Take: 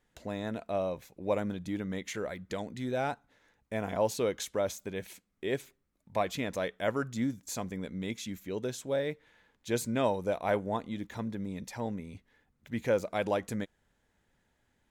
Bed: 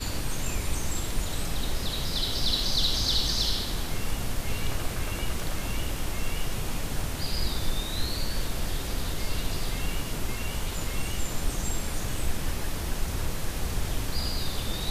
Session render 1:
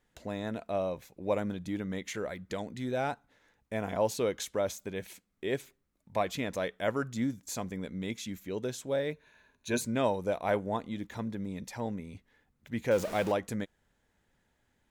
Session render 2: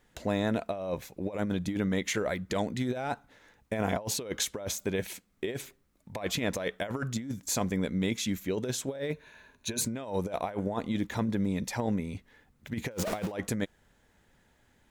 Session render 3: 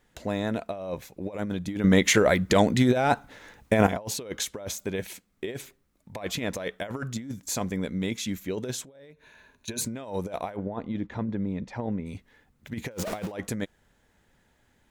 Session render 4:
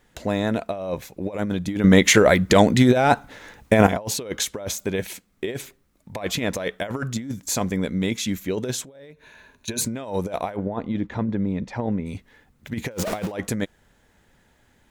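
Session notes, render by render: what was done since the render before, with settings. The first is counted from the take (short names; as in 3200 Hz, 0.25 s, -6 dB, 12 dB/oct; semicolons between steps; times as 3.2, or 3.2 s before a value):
9.12–9.81 ripple EQ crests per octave 1.5, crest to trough 11 dB; 12.91–13.32 zero-crossing step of -35.5 dBFS
in parallel at -1.5 dB: limiter -25.5 dBFS, peak gain reduction 9.5 dB; on the sum: negative-ratio compressor -30 dBFS, ratio -0.5
1.84–3.87 gain +10.5 dB; 8.84–9.68 compressor 5:1, threshold -49 dBFS; 10.56–12.06 tape spacing loss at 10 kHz 27 dB
gain +5.5 dB; limiter -1 dBFS, peak gain reduction 1 dB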